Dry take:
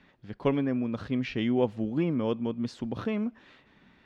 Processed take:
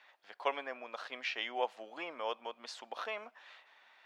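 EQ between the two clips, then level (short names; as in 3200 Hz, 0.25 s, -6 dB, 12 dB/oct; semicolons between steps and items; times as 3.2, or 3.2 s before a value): Chebyshev high-pass 690 Hz, order 3; +1.5 dB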